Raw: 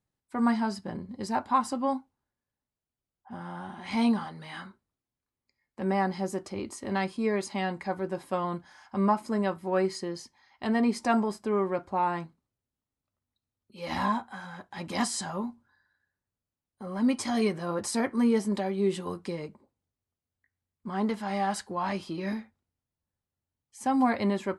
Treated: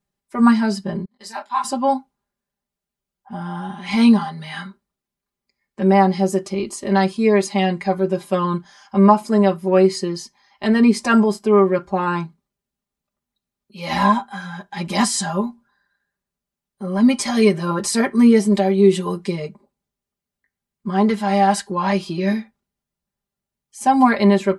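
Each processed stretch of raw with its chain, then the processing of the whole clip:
0:01.05–0:01.64: high-pass filter 1,300 Hz 6 dB per octave + noise gate −53 dBFS, range −18 dB + micro pitch shift up and down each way 60 cents
whole clip: noise reduction from a noise print of the clip's start 6 dB; comb filter 5 ms, depth 90%; level +8.5 dB

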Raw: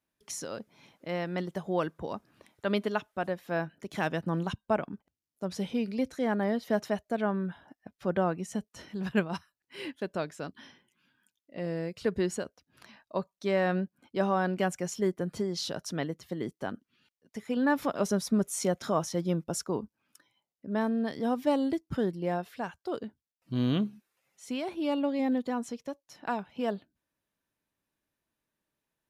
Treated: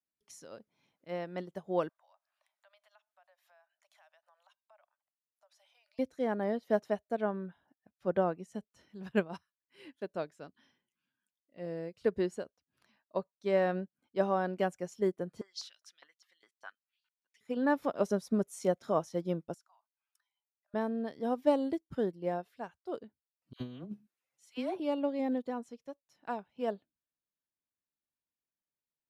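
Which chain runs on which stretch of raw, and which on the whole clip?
0:01.89–0:05.99: Butterworth high-pass 580 Hz 96 dB per octave + downward compressor 3 to 1, threshold −50 dBFS
0:15.41–0:17.41: high-shelf EQ 11,000 Hz −11 dB + auto-filter high-pass saw up 4.9 Hz 990–5,600 Hz
0:19.54–0:20.74: Butterworth high-pass 650 Hz 96 dB per octave + downward compressor 2.5 to 1, threshold −50 dBFS
0:23.53–0:24.80: all-pass dispersion lows, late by 73 ms, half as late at 1,200 Hz + compressor whose output falls as the input rises −30 dBFS, ratio −0.5
whole clip: dynamic equaliser 520 Hz, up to +6 dB, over −39 dBFS, Q 0.8; expander for the loud parts 1.5 to 1, over −43 dBFS; level −4 dB

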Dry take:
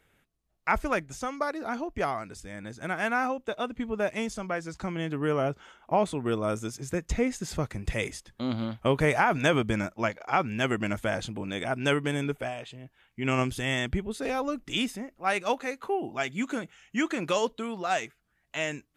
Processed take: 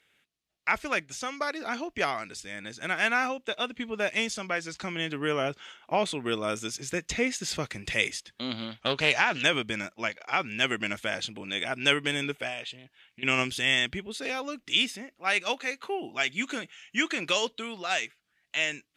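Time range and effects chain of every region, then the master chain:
0:08.80–0:09.43: low-pass with resonance 6,000 Hz, resonance Q 1.8 + highs frequency-modulated by the lows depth 0.32 ms
0:12.78–0:13.23: downward compressor 12 to 1, threshold −40 dBFS + highs frequency-modulated by the lows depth 0.21 ms
whole clip: meter weighting curve D; speech leveller within 4 dB 2 s; level −4 dB

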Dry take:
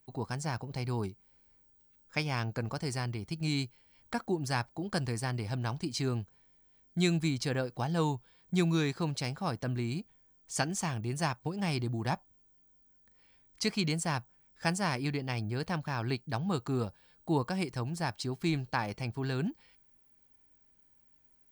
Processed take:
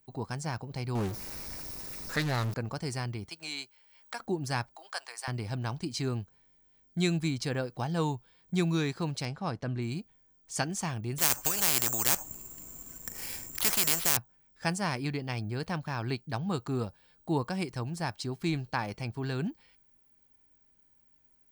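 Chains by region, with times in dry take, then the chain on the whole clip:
0:00.95–0:02.54: converter with a step at zero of −32 dBFS + parametric band 3,200 Hz −9 dB 0.25 octaves + highs frequency-modulated by the lows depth 0.45 ms
0:03.29–0:04.20: high-pass filter 650 Hz + multiband upward and downward compressor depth 40%
0:04.75–0:05.28: high-pass filter 730 Hz 24 dB per octave + one half of a high-frequency compander encoder only
0:09.25–0:09.82: high-frequency loss of the air 66 metres + one half of a high-frequency compander decoder only
0:11.18–0:14.17: bad sample-rate conversion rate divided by 6×, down filtered, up zero stuff + every bin compressed towards the loudest bin 4 to 1
whole clip: no processing

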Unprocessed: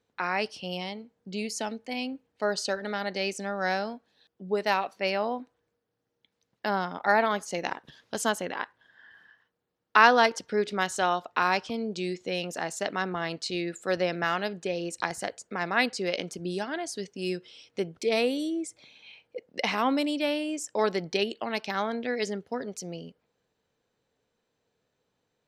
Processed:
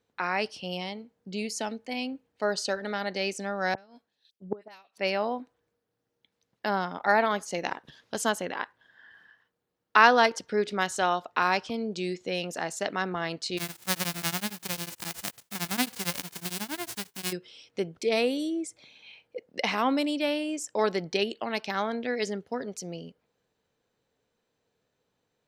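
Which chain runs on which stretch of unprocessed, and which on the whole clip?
0:03.74–0:04.98: all-pass dispersion highs, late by 45 ms, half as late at 2,000 Hz + gate with flip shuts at −22 dBFS, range −24 dB + multiband upward and downward expander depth 100%
0:13.57–0:17.31: spectral envelope flattened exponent 0.1 + tremolo along a rectified sine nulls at 11 Hz
whole clip: no processing

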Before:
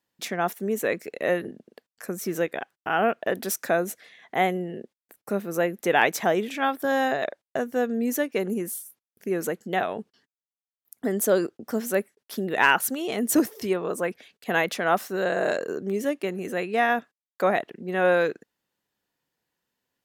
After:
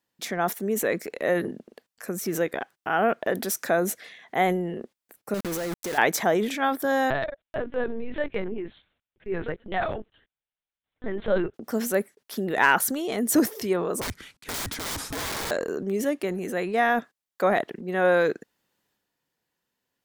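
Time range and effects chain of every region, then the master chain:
0:05.34–0:05.98: converter with a step at zero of −29.5 dBFS + output level in coarse steps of 15 dB + bit-depth reduction 6 bits, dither none
0:07.10–0:11.54: low-shelf EQ 370 Hz −6.5 dB + notch filter 1,000 Hz, Q 5.1 + linear-prediction vocoder at 8 kHz pitch kept
0:14.01–0:15.51: variable-slope delta modulation 64 kbit/s + frequency shifter −280 Hz + wrap-around overflow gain 26 dB
whole clip: dynamic equaliser 2,700 Hz, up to −7 dB, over −50 dBFS, Q 5.4; transient designer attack 0 dB, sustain +6 dB

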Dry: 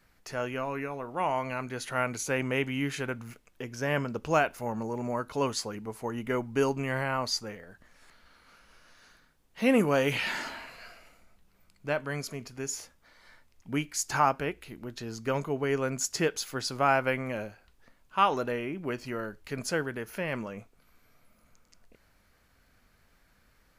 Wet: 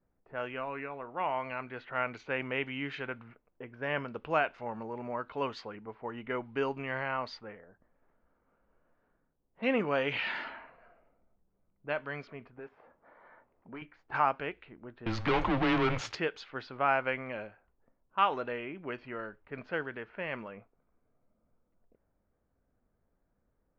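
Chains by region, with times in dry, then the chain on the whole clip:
0:12.59–0:13.82: downward compressor 2 to 1, threshold −53 dBFS + mid-hump overdrive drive 24 dB, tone 1,400 Hz, clips at −25.5 dBFS
0:15.06–0:16.15: mains-hum notches 60/120/180/240 Hz + leveller curve on the samples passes 5 + frequency shifter −120 Hz
whole clip: low-pass filter 3,500 Hz 24 dB per octave; low-pass that shuts in the quiet parts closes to 490 Hz, open at −27 dBFS; low-shelf EQ 340 Hz −9 dB; level −2 dB

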